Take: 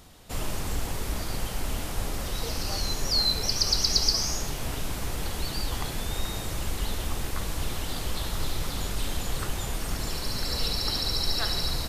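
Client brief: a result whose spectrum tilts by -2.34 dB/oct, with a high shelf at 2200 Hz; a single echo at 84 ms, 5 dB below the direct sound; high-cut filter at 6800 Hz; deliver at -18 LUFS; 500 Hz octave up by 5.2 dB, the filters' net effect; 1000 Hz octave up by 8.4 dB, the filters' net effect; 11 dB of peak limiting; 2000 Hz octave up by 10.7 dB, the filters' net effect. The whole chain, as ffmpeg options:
-af "lowpass=6.8k,equalizer=f=500:t=o:g=4,equalizer=f=1k:t=o:g=6,equalizer=f=2k:t=o:g=9,highshelf=f=2.2k:g=4.5,alimiter=limit=-16dB:level=0:latency=1,aecho=1:1:84:0.562,volume=7.5dB"

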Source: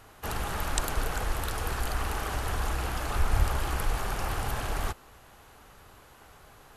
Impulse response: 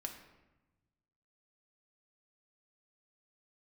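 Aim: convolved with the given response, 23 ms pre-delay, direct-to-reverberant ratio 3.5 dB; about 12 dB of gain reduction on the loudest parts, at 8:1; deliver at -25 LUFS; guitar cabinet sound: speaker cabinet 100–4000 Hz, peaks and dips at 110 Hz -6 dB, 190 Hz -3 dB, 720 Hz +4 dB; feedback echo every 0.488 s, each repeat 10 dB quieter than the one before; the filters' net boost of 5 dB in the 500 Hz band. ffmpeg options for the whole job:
-filter_complex "[0:a]equalizer=f=500:t=o:g=5,acompressor=threshold=-31dB:ratio=8,aecho=1:1:488|976|1464|1952:0.316|0.101|0.0324|0.0104,asplit=2[a][b];[1:a]atrim=start_sample=2205,adelay=23[c];[b][c]afir=irnorm=-1:irlink=0,volume=-1.5dB[d];[a][d]amix=inputs=2:normalize=0,highpass=100,equalizer=f=110:t=q:w=4:g=-6,equalizer=f=190:t=q:w=4:g=-3,equalizer=f=720:t=q:w=4:g=4,lowpass=f=4k:w=0.5412,lowpass=f=4k:w=1.3066,volume=12dB"

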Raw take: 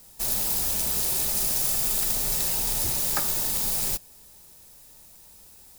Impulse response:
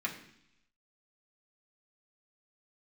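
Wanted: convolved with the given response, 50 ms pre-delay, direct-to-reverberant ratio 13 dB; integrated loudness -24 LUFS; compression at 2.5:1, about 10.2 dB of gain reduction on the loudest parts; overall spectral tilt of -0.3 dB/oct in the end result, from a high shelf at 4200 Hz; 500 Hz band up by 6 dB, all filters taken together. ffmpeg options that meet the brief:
-filter_complex "[0:a]equalizer=f=500:t=o:g=7.5,highshelf=f=4.2k:g=3.5,acompressor=threshold=-34dB:ratio=2.5,asplit=2[a][b];[1:a]atrim=start_sample=2205,adelay=50[c];[b][c]afir=irnorm=-1:irlink=0,volume=-17dB[d];[a][d]amix=inputs=2:normalize=0,volume=5.5dB"

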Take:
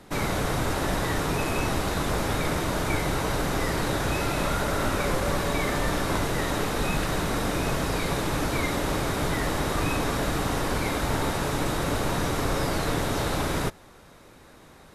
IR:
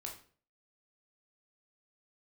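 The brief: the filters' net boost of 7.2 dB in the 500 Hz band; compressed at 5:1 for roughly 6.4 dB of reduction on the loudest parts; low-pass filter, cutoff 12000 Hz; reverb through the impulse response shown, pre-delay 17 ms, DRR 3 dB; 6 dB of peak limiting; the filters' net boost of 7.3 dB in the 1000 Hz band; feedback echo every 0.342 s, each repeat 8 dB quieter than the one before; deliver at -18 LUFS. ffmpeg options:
-filter_complex "[0:a]lowpass=12k,equalizer=f=500:t=o:g=7,equalizer=f=1k:t=o:g=7,acompressor=threshold=-25dB:ratio=5,alimiter=limit=-21dB:level=0:latency=1,aecho=1:1:342|684|1026|1368|1710:0.398|0.159|0.0637|0.0255|0.0102,asplit=2[a][b];[1:a]atrim=start_sample=2205,adelay=17[c];[b][c]afir=irnorm=-1:irlink=0,volume=-0.5dB[d];[a][d]amix=inputs=2:normalize=0,volume=10dB"

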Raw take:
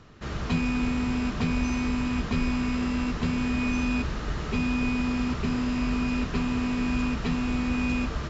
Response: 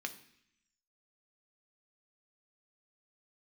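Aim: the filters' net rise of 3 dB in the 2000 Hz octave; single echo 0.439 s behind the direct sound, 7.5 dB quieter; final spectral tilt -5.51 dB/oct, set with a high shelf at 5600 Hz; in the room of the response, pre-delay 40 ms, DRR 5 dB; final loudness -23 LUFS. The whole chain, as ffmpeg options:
-filter_complex "[0:a]equalizer=f=2k:t=o:g=5.5,highshelf=f=5.6k:g=-8.5,aecho=1:1:439:0.422,asplit=2[a][b];[1:a]atrim=start_sample=2205,adelay=40[c];[b][c]afir=irnorm=-1:irlink=0,volume=-5.5dB[d];[a][d]amix=inputs=2:normalize=0,volume=-1dB"

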